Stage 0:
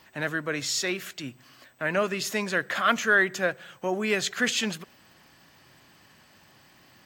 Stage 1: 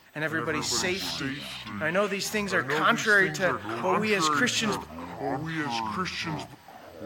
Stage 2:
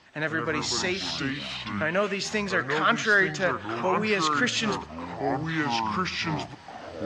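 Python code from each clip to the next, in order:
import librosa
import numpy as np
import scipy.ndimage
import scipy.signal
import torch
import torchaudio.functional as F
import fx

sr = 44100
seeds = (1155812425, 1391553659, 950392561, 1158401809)

y1 = fx.echo_pitch(x, sr, ms=87, semitones=-5, count=3, db_per_echo=-6.0)
y1 = y1 + 10.0 ** (-20.0 / 20.0) * np.pad(y1, (int(107 * sr / 1000.0), 0))[:len(y1)]
y2 = fx.recorder_agc(y1, sr, target_db=-15.5, rise_db_per_s=5.2, max_gain_db=30)
y2 = scipy.signal.sosfilt(scipy.signal.butter(4, 6700.0, 'lowpass', fs=sr, output='sos'), y2)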